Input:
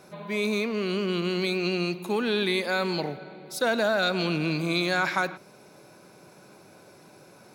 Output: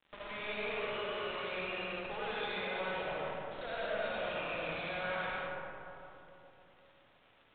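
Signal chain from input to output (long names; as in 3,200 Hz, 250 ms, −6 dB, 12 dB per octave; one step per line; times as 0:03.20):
Butterworth high-pass 480 Hz 48 dB per octave
brickwall limiter −25 dBFS, peak gain reduction 10.5 dB
log-companded quantiser 2 bits
surface crackle 300 per second −47 dBFS
tube saturation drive 42 dB, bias 0.75
comb and all-pass reverb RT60 3.3 s, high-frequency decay 0.3×, pre-delay 30 ms, DRR −6.5 dB
downsampling to 8,000 Hz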